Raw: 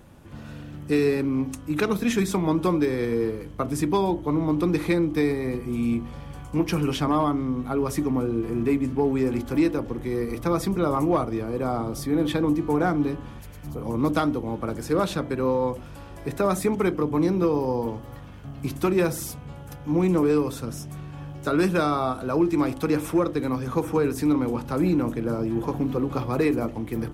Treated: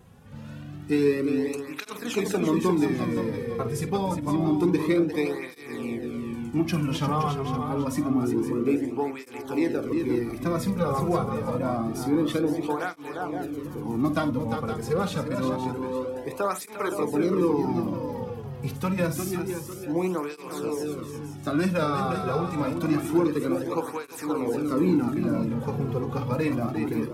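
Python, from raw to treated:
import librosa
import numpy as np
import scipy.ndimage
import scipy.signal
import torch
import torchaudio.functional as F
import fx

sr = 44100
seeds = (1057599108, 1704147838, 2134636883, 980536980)

y = fx.echo_multitap(x, sr, ms=(49, 351, 518, 850), db=(-11.5, -7.0, -9.5, -17.0))
y = fx.flanger_cancel(y, sr, hz=0.27, depth_ms=3.5)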